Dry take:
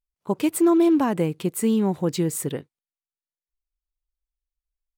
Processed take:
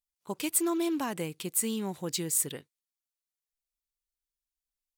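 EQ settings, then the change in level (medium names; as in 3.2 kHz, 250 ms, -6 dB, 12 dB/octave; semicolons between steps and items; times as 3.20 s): pre-emphasis filter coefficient 0.9; treble shelf 9.2 kHz -10 dB; +7.0 dB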